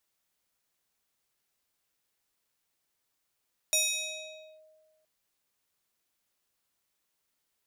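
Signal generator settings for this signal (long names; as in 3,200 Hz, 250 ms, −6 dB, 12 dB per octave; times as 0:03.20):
two-operator FM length 1.32 s, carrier 625 Hz, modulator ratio 5.05, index 3, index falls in 0.88 s linear, decay 1.60 s, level −21.5 dB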